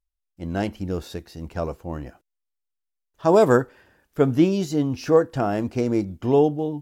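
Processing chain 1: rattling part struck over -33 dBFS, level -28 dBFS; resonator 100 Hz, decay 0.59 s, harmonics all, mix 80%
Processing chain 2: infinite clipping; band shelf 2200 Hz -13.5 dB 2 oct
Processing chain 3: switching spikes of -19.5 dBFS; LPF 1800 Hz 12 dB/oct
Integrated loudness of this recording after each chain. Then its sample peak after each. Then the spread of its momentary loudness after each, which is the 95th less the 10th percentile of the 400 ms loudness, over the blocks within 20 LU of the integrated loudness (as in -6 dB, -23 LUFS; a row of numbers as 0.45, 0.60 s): -32.0, -24.5, -22.0 LUFS; -15.0, -15.5, -6.5 dBFS; 17, 4, 18 LU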